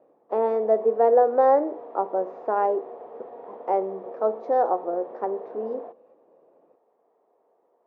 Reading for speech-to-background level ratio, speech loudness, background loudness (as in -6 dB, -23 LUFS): 17.5 dB, -24.0 LUFS, -41.5 LUFS